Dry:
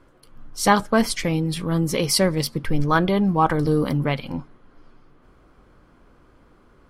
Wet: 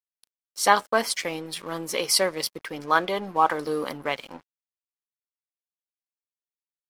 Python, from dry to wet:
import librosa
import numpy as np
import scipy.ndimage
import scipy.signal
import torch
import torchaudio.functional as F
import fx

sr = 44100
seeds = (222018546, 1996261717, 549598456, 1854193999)

y = scipy.signal.sosfilt(scipy.signal.butter(2, 500.0, 'highpass', fs=sr, output='sos'), x)
y = np.sign(y) * np.maximum(np.abs(y) - 10.0 ** (-45.5 / 20.0), 0.0)